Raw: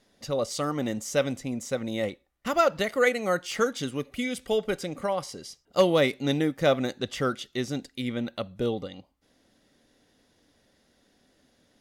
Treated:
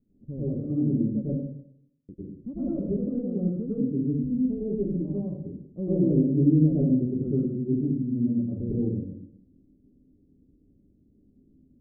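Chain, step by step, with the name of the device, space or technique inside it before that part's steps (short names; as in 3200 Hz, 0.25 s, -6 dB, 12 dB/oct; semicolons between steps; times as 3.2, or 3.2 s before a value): 1.24–2.09 steep high-pass 2900 Hz; de-esser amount 85%; next room (LPF 290 Hz 24 dB/oct; reverb RT60 0.70 s, pre-delay 92 ms, DRR -8 dB)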